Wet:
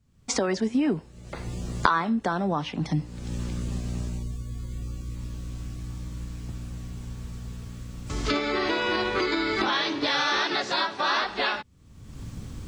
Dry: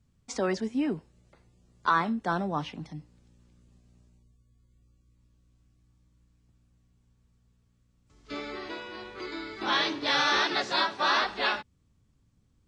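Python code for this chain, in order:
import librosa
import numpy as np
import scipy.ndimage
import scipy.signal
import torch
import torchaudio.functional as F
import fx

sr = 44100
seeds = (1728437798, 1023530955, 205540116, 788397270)

y = fx.recorder_agc(x, sr, target_db=-17.0, rise_db_per_s=42.0, max_gain_db=30)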